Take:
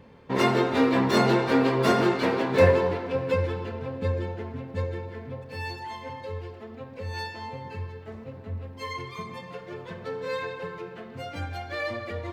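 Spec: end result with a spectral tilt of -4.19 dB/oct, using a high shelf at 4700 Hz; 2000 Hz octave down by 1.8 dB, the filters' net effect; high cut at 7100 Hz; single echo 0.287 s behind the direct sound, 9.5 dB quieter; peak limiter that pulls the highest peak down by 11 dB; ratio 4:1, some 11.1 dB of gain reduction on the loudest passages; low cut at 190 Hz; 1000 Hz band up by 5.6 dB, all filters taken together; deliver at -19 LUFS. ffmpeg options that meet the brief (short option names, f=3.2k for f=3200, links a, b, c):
-af "highpass=190,lowpass=7.1k,equalizer=f=1k:t=o:g=8,equalizer=f=2k:t=o:g=-4,highshelf=f=4.7k:g=-7.5,acompressor=threshold=-26dB:ratio=4,alimiter=level_in=3dB:limit=-24dB:level=0:latency=1,volume=-3dB,aecho=1:1:287:0.335,volume=16.5dB"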